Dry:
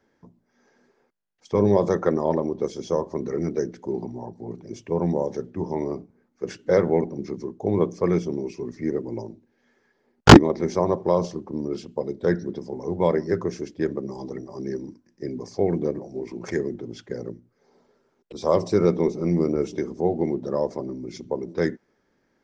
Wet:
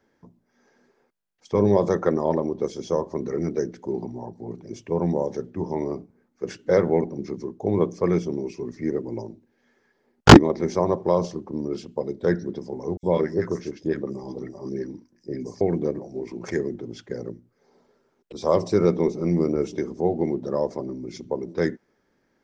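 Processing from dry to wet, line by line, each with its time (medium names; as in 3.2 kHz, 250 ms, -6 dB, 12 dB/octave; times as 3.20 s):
12.97–15.61 s: three bands offset in time highs, lows, mids 60/100 ms, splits 1/5.8 kHz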